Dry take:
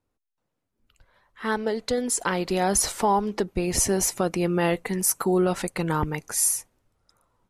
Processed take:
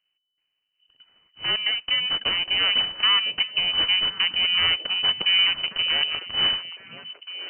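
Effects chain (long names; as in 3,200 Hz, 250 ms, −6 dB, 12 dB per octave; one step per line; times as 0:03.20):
full-wave rectification
voice inversion scrambler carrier 3,000 Hz
echo through a band-pass that steps 503 ms, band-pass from 180 Hz, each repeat 1.4 octaves, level −6 dB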